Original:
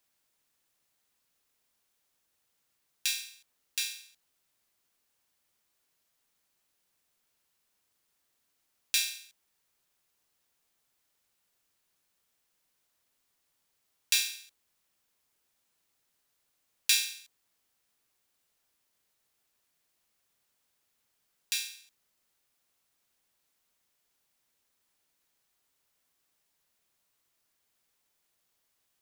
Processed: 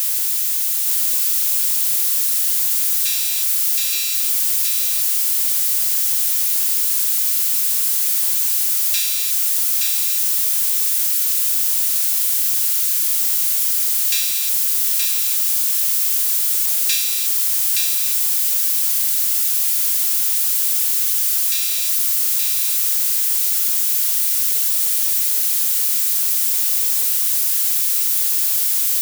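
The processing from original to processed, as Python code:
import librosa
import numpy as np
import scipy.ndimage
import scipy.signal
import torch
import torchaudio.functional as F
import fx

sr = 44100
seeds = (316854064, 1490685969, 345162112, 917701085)

y = x + 0.5 * 10.0 ** (-17.5 / 20.0) * np.diff(np.sign(x), prepend=np.sign(x[:1]))
y = y + 10.0 ** (-3.5 / 20.0) * np.pad(y, (int(872 * sr / 1000.0), 0))[:len(y)]
y = F.gain(torch.from_numpy(y), 1.5).numpy()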